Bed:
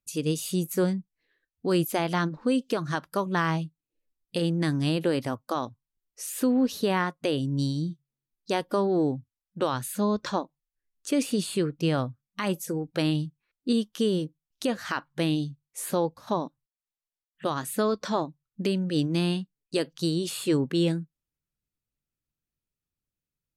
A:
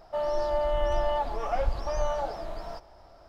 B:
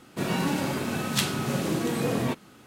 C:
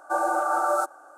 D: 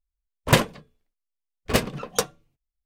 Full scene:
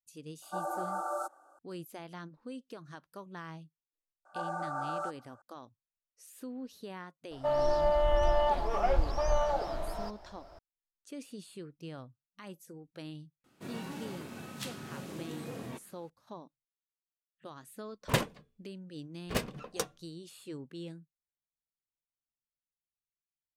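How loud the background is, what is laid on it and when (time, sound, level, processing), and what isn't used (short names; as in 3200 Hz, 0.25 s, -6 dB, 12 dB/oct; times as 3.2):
bed -19 dB
0.42 add C -11.5 dB + Butterworth band-stop 2000 Hz, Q 1.6
4.25 add C -12 dB + BPF 500–6100 Hz
7.31 add A
13.44 add B -15.5 dB
17.61 add D -11 dB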